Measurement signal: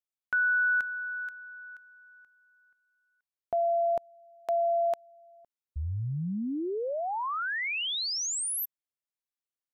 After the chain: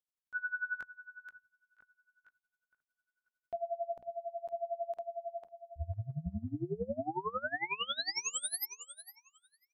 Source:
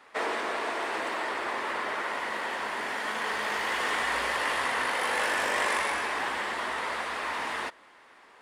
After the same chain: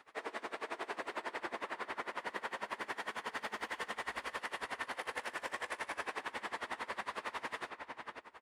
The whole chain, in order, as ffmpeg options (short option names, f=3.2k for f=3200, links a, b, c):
-filter_complex "[0:a]lowshelf=f=240:g=4.5,bandreject=f=60:t=h:w=6,bandreject=f=120:t=h:w=6,bandreject=f=180:t=h:w=6,bandreject=f=240:t=h:w=6,acompressor=threshold=-29dB:ratio=6:attack=0.12:release=492:knee=1:detection=peak,asplit=2[a][b];[b]adelay=499,lowpass=f=2.9k:p=1,volume=-4dB,asplit=2[c][d];[d]adelay=499,lowpass=f=2.9k:p=1,volume=0.32,asplit=2[e][f];[f]adelay=499,lowpass=f=2.9k:p=1,volume=0.32,asplit=2[g][h];[h]adelay=499,lowpass=f=2.9k:p=1,volume=0.32[i];[a][c][e][g][i]amix=inputs=5:normalize=0,aeval=exprs='val(0)*pow(10,-22*(0.5-0.5*cos(2*PI*11*n/s))/20)':c=same,volume=-1dB"